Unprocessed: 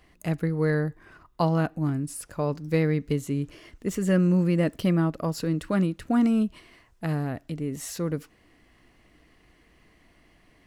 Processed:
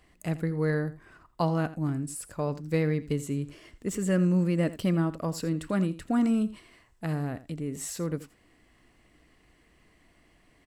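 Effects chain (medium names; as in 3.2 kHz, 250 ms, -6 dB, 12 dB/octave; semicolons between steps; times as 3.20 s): peaking EQ 7.9 kHz +8 dB 0.22 oct; delay 83 ms -16 dB; trim -3 dB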